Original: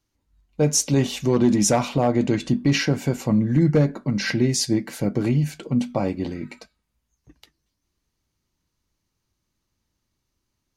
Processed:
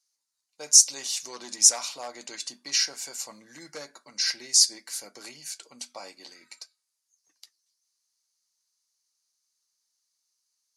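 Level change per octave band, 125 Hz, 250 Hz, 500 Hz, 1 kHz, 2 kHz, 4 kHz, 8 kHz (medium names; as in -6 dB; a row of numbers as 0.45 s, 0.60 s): under -40 dB, -31.5 dB, -21.0 dB, -13.5 dB, -9.0 dB, +4.5 dB, +6.5 dB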